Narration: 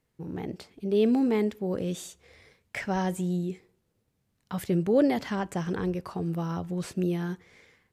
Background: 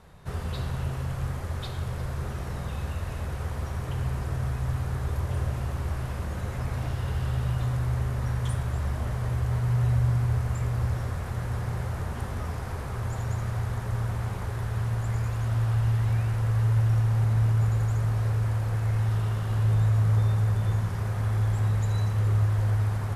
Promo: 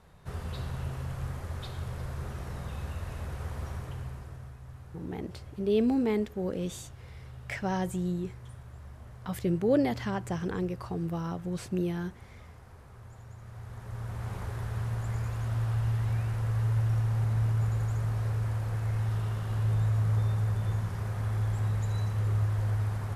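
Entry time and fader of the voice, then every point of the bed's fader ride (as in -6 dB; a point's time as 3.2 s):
4.75 s, -2.5 dB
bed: 3.72 s -5 dB
4.59 s -18 dB
13.36 s -18 dB
14.35 s -4.5 dB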